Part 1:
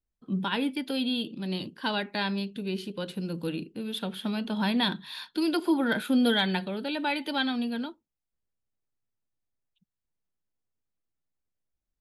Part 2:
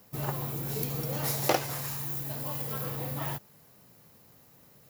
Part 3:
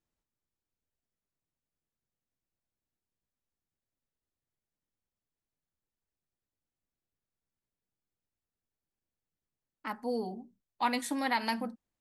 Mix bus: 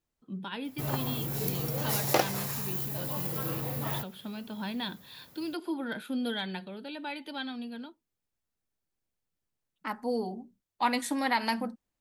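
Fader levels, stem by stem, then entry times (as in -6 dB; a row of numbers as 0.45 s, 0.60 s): -9.0 dB, +0.5 dB, +2.5 dB; 0.00 s, 0.65 s, 0.00 s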